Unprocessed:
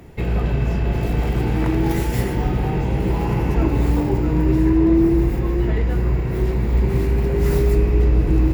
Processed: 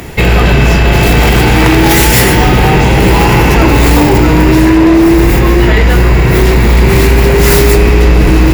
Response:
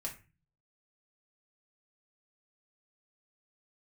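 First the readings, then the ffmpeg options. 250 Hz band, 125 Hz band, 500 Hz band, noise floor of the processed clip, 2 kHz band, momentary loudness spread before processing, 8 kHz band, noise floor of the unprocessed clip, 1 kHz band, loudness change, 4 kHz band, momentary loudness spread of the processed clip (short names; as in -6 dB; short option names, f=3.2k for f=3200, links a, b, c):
+11.5 dB, +11.0 dB, +13.5 dB, -7 dBFS, +22.5 dB, 5 LU, n/a, -22 dBFS, +18.0 dB, +12.5 dB, +24.5 dB, 2 LU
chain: -af "tiltshelf=f=1.1k:g=-5.5,apsyclip=22.5dB,volume=-1.5dB"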